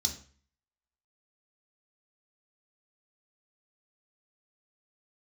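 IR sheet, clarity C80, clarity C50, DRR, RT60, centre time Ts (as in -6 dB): 14.0 dB, 9.5 dB, 1.5 dB, 0.45 s, 16 ms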